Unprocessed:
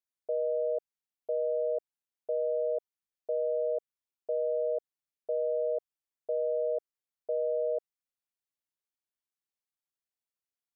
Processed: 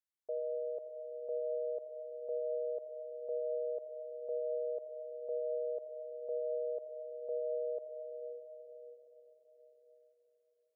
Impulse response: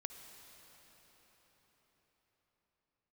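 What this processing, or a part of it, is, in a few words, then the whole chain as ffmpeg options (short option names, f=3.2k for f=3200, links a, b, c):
cathedral: -filter_complex "[1:a]atrim=start_sample=2205[a];[0:a][a]afir=irnorm=-1:irlink=0,volume=-3dB"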